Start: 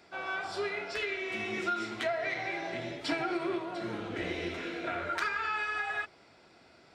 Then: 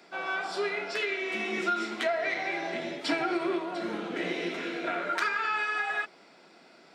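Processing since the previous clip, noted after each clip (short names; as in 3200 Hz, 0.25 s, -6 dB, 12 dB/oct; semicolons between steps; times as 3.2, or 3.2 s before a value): steep high-pass 160 Hz 48 dB/oct; gain +3.5 dB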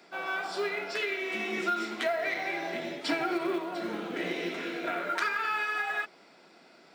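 short-mantissa float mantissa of 4-bit; gain -1 dB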